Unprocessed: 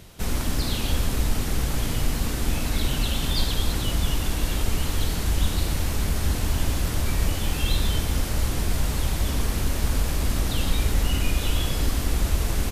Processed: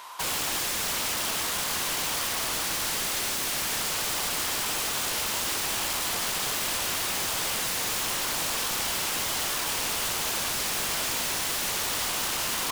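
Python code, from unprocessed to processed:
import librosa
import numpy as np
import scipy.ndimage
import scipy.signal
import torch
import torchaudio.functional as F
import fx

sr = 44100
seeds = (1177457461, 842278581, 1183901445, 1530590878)

y = fx.highpass_res(x, sr, hz=1000.0, q=11.0)
y = (np.mod(10.0 ** (27.5 / 20.0) * y + 1.0, 2.0) - 1.0) / 10.0 ** (27.5 / 20.0)
y = fx.doppler_dist(y, sr, depth_ms=0.27)
y = F.gain(torch.from_numpy(y), 4.5).numpy()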